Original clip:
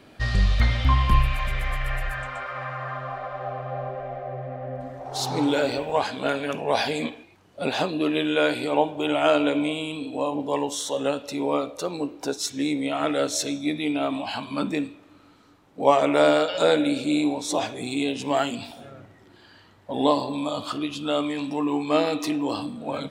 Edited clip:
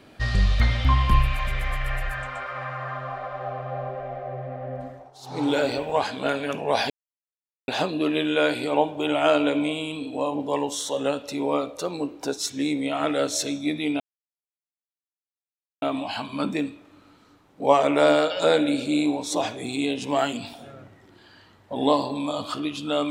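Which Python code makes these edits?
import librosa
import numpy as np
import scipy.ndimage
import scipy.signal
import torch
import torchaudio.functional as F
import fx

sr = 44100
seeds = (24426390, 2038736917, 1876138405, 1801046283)

y = fx.edit(x, sr, fx.fade_down_up(start_s=4.83, length_s=0.68, db=-19.0, fade_s=0.29),
    fx.silence(start_s=6.9, length_s=0.78),
    fx.insert_silence(at_s=14.0, length_s=1.82), tone=tone)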